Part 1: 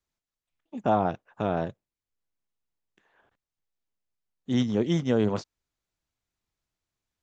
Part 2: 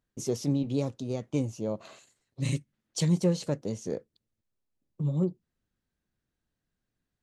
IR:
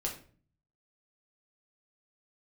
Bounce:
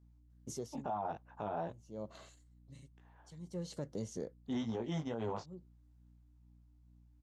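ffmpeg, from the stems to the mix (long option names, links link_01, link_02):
-filter_complex "[0:a]equalizer=frequency=860:width_type=o:width=0.98:gain=11.5,aeval=exprs='val(0)+0.00158*(sin(2*PI*60*n/s)+sin(2*PI*2*60*n/s)/2+sin(2*PI*3*60*n/s)/3+sin(2*PI*4*60*n/s)/4+sin(2*PI*5*60*n/s)/5)':channel_layout=same,flanger=delay=17:depth=2.5:speed=2.3,volume=-4.5dB,asplit=2[link_01][link_02];[1:a]bandreject=frequency=2500:width=7.1,aeval=exprs='val(0)*pow(10,-30*(0.5-0.5*cos(2*PI*0.54*n/s))/20)':channel_layout=same,adelay=300,volume=-3.5dB[link_03];[link_02]apad=whole_len=331837[link_04];[link_03][link_04]sidechaincompress=threshold=-40dB:ratio=8:attack=9.5:release=603[link_05];[link_01][link_05]amix=inputs=2:normalize=0,alimiter=level_in=5.5dB:limit=-24dB:level=0:latency=1:release=134,volume=-5.5dB"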